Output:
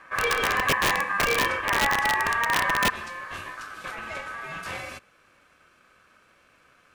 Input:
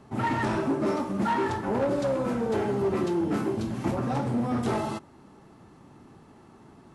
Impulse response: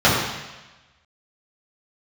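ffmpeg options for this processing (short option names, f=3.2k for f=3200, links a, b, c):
-af "asetnsamples=n=441:p=0,asendcmd='2.9 equalizer g -12.5',equalizer=f=290:t=o:w=2.7:g=3.5,aeval=exprs='(mod(6.68*val(0)+1,2)-1)/6.68':c=same,aeval=exprs='val(0)*sin(2*PI*1400*n/s)':c=same,volume=3dB"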